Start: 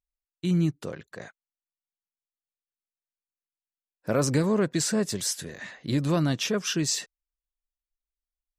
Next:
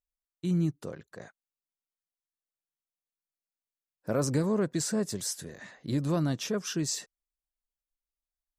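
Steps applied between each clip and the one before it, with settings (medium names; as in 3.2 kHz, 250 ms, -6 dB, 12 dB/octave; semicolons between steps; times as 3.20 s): peaking EQ 2.7 kHz -6.5 dB 1.5 oct; trim -3.5 dB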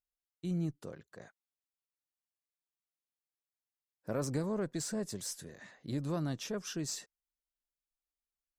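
single-diode clipper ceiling -20.5 dBFS; trim -6 dB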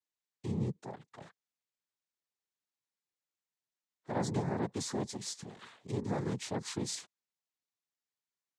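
noise-vocoded speech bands 6; trim +1 dB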